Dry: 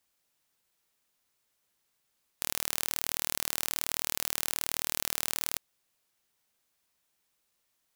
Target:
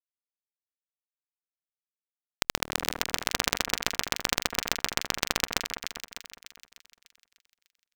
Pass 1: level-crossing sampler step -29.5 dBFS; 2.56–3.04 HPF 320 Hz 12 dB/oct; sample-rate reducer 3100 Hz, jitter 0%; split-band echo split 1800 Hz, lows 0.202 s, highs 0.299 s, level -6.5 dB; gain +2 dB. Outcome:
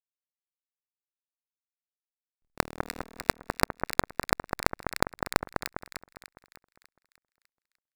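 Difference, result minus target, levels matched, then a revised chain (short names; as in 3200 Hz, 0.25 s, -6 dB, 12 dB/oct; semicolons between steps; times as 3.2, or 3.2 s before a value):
sample-rate reducer: distortion +12 dB
level-crossing sampler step -29.5 dBFS; 2.56–3.04 HPF 320 Hz 12 dB/oct; sample-rate reducer 11000 Hz, jitter 0%; split-band echo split 1800 Hz, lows 0.202 s, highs 0.299 s, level -6.5 dB; gain +2 dB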